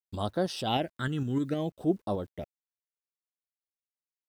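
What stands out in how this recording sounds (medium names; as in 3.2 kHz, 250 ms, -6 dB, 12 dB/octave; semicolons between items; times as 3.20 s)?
phasing stages 8, 0.62 Hz, lowest notch 660–2400 Hz; a quantiser's noise floor 12-bit, dither none; tremolo saw up 6.5 Hz, depth 40%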